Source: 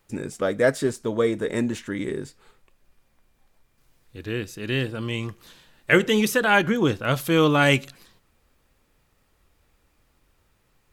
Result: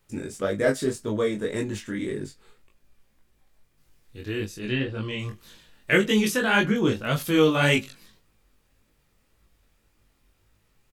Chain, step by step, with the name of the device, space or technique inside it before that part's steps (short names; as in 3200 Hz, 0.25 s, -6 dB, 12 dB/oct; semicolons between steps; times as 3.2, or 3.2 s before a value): 4.46–5.19 treble ducked by the level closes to 2900 Hz, closed at -21 dBFS; double-tracked vocal (doubler 19 ms -7.5 dB; chorus 1.8 Hz, delay 19 ms, depth 4.9 ms); 6.22–6.93 LPF 12000 Hz 12 dB/oct; bell 870 Hz -4 dB 2.1 oct; gain +2 dB